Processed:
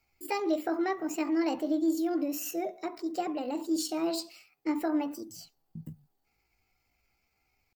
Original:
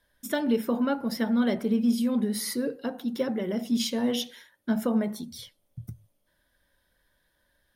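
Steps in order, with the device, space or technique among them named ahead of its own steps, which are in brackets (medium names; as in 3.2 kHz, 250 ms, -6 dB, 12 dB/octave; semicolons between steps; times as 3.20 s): chipmunk voice (pitch shift +5.5 st); trim -4 dB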